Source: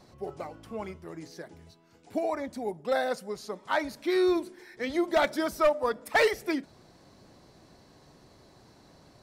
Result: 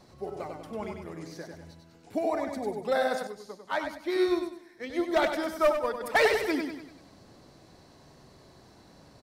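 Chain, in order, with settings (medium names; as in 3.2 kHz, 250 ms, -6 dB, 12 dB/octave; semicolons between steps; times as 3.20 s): feedback delay 97 ms, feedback 46%, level -5 dB; 3.27–6.01 s: upward expansion 1.5:1, over -39 dBFS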